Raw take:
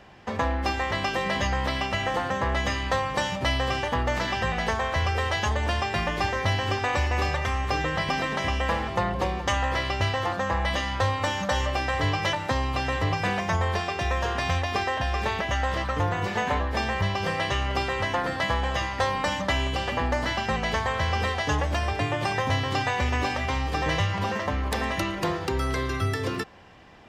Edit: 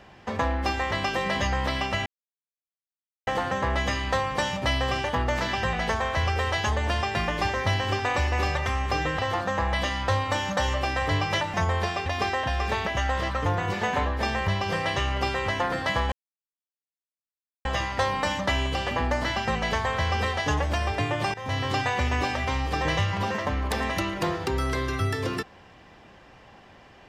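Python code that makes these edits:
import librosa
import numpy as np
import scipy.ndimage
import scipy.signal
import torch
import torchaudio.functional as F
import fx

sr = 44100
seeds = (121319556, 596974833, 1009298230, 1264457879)

y = fx.edit(x, sr, fx.insert_silence(at_s=2.06, length_s=1.21),
    fx.cut(start_s=7.98, length_s=2.13),
    fx.cut(start_s=12.46, length_s=1.0),
    fx.cut(start_s=13.98, length_s=0.62),
    fx.insert_silence(at_s=18.66, length_s=1.53),
    fx.fade_in_from(start_s=22.35, length_s=0.3, floor_db=-19.5), tone=tone)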